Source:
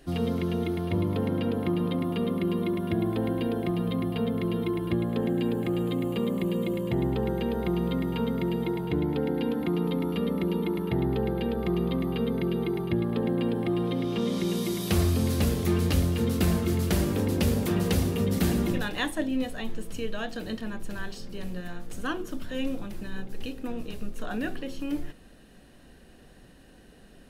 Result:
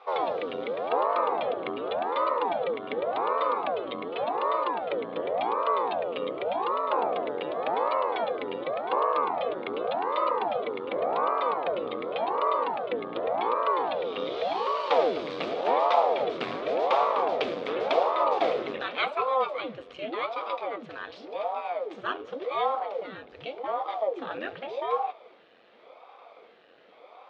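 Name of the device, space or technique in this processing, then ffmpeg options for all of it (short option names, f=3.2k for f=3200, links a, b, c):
voice changer toy: -af "aeval=exprs='val(0)*sin(2*PI*420*n/s+420*0.9/0.88*sin(2*PI*0.88*n/s))':c=same,highpass=440,equalizer=f=490:t=q:w=4:g=8,equalizer=f=700:t=q:w=4:g=5,equalizer=f=1.2k:t=q:w=4:g=9,equalizer=f=2.3k:t=q:w=4:g=6,equalizer=f=3.5k:t=q:w=4:g=5,lowpass=f=4.1k:w=0.5412,lowpass=f=4.1k:w=1.3066"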